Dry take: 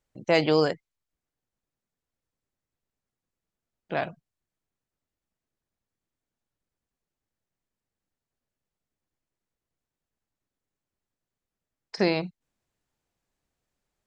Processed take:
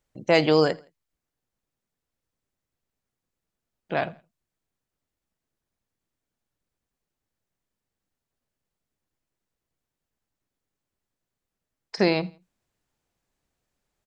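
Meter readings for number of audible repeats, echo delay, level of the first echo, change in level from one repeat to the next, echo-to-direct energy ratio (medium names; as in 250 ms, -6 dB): 2, 83 ms, -24.0 dB, -8.5 dB, -23.5 dB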